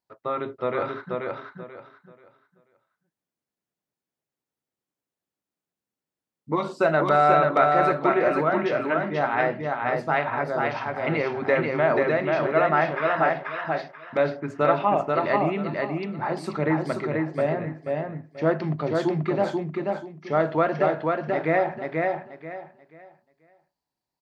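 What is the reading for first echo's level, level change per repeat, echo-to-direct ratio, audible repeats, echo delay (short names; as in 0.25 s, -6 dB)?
-3.0 dB, -11.5 dB, -2.5 dB, 3, 0.485 s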